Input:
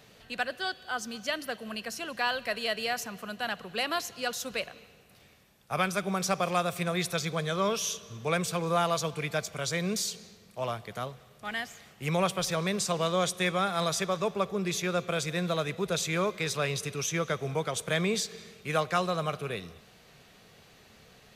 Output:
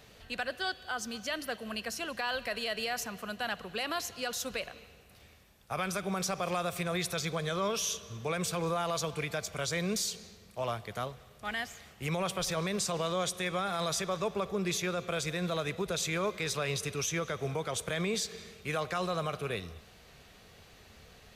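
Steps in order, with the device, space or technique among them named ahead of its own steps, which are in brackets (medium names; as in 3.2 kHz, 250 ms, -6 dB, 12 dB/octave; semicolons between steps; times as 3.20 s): car stereo with a boomy subwoofer (resonant low shelf 100 Hz +6.5 dB, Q 1.5; peak limiter -23.5 dBFS, peak gain reduction 8 dB)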